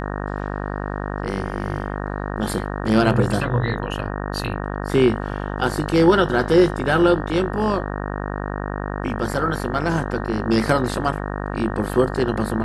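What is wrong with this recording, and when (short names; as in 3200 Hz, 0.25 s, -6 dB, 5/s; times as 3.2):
buzz 50 Hz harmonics 37 -27 dBFS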